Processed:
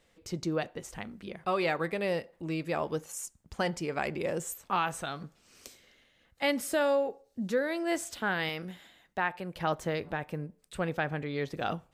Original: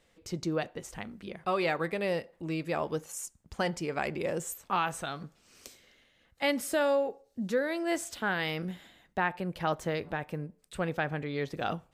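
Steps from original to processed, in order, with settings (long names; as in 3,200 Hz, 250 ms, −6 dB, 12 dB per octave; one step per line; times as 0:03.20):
0:08.49–0:09.56: low-shelf EQ 400 Hz −6.5 dB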